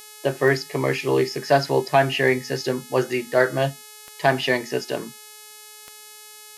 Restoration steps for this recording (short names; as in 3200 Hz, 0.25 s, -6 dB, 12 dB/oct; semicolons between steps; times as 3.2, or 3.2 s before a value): de-click; de-hum 425.2 Hz, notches 30